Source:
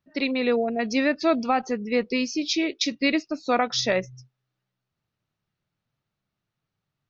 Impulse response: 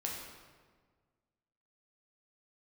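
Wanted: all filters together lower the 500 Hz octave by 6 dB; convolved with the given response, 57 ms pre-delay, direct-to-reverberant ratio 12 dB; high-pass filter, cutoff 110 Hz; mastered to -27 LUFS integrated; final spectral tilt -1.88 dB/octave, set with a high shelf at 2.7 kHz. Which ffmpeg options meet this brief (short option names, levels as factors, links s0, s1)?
-filter_complex "[0:a]highpass=110,equalizer=f=500:t=o:g=-7.5,highshelf=f=2700:g=6,asplit=2[s0][s1];[1:a]atrim=start_sample=2205,adelay=57[s2];[s1][s2]afir=irnorm=-1:irlink=0,volume=0.2[s3];[s0][s3]amix=inputs=2:normalize=0,volume=0.75"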